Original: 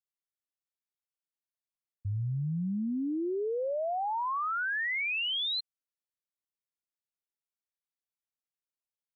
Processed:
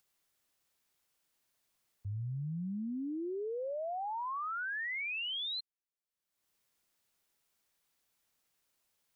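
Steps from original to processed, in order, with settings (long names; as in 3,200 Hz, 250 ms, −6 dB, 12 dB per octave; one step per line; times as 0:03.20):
upward compression, threshold −54 dBFS
level −6 dB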